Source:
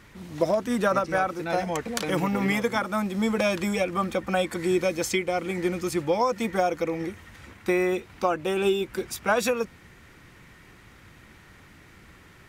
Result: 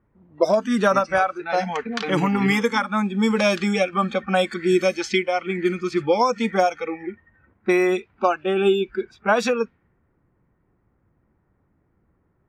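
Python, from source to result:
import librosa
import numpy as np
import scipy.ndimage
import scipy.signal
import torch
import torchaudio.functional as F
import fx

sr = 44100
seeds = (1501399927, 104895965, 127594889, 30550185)

y = fx.peak_eq(x, sr, hz=9700.0, db=fx.steps((0.0, -7.0), (8.46, -13.5)), octaves=2.6)
y = fx.noise_reduce_blind(y, sr, reduce_db=18)
y = fx.dynamic_eq(y, sr, hz=5100.0, q=0.94, threshold_db=-52.0, ratio=4.0, max_db=8)
y = fx.env_lowpass(y, sr, base_hz=950.0, full_db=-20.0)
y = F.gain(torch.from_numpy(y), 5.5).numpy()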